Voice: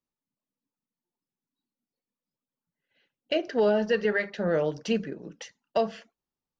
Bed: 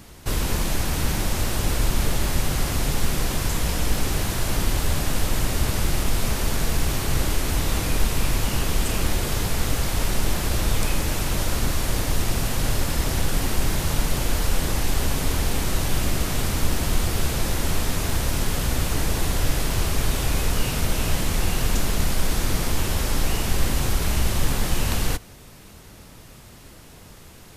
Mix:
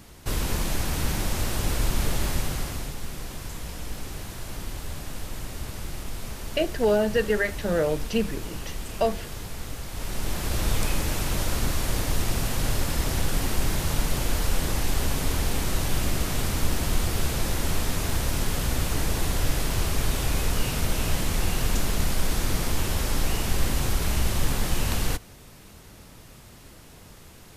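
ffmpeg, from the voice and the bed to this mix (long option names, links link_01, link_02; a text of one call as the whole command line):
ffmpeg -i stem1.wav -i stem2.wav -filter_complex "[0:a]adelay=3250,volume=1.5dB[link_01];[1:a]volume=6.5dB,afade=type=out:start_time=2.27:duration=0.68:silence=0.354813,afade=type=in:start_time=9.89:duration=0.79:silence=0.334965[link_02];[link_01][link_02]amix=inputs=2:normalize=0" out.wav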